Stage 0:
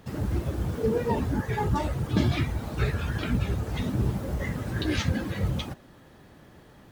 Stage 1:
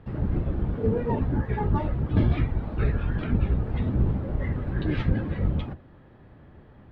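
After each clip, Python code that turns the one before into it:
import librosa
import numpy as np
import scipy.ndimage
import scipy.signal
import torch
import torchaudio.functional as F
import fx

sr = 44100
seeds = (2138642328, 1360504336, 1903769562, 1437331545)

y = fx.octave_divider(x, sr, octaves=1, level_db=1.0)
y = fx.air_absorb(y, sr, metres=450.0)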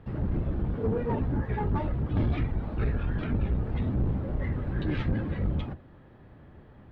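y = 10.0 ** (-19.5 / 20.0) * np.tanh(x / 10.0 ** (-19.5 / 20.0))
y = F.gain(torch.from_numpy(y), -1.0).numpy()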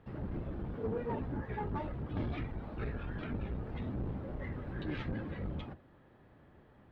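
y = fx.low_shelf(x, sr, hz=190.0, db=-7.5)
y = F.gain(torch.from_numpy(y), -5.5).numpy()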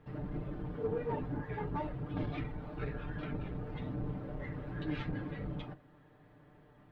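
y = x + 0.71 * np.pad(x, (int(6.7 * sr / 1000.0), 0))[:len(x)]
y = F.gain(torch.from_numpy(y), -1.5).numpy()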